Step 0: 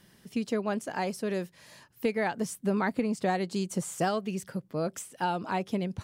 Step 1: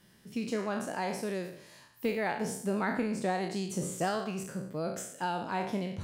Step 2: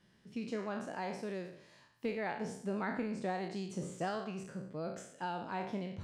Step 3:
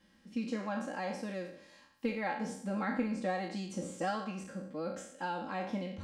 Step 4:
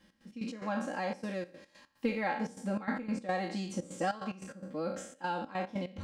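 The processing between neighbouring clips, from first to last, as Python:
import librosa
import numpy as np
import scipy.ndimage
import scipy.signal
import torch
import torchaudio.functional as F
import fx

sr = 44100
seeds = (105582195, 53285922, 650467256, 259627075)

y1 = fx.spec_trails(x, sr, decay_s=0.66)
y1 = F.gain(torch.from_numpy(y1), -4.5).numpy()
y2 = fx.air_absorb(y1, sr, metres=74.0)
y2 = F.gain(torch.from_numpy(y2), -5.5).numpy()
y3 = y2 + 0.96 * np.pad(y2, (int(3.7 * sr / 1000.0), 0))[:len(y2)]
y4 = fx.step_gate(y3, sr, bpm=146, pattern='x.x.x.xxxxx.x', floor_db=-12.0, edge_ms=4.5)
y4 = F.gain(torch.from_numpy(y4), 2.5).numpy()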